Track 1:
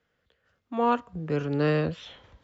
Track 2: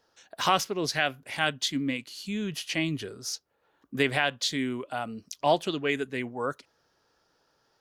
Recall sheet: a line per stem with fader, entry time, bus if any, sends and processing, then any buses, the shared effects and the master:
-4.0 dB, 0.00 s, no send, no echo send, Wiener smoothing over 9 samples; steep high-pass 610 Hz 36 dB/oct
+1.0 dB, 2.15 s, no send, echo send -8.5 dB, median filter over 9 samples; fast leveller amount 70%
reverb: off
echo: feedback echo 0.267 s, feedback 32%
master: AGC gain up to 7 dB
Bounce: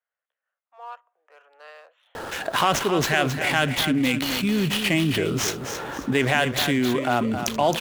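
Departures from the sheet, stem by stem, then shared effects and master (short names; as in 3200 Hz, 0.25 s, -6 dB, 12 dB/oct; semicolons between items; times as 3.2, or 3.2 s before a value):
stem 1 -4.0 dB -> -12.5 dB; master: missing AGC gain up to 7 dB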